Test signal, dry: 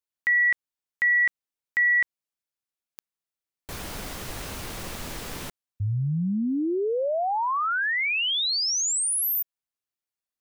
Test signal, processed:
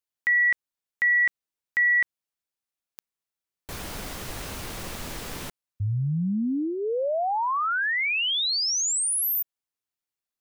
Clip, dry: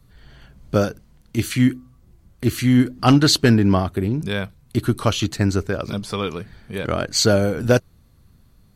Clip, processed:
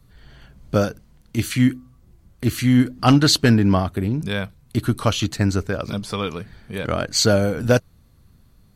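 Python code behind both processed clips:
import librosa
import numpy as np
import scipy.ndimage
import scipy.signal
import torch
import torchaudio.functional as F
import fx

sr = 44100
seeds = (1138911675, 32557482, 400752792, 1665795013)

y = fx.dynamic_eq(x, sr, hz=370.0, q=4.9, threshold_db=-38.0, ratio=6.0, max_db=-5)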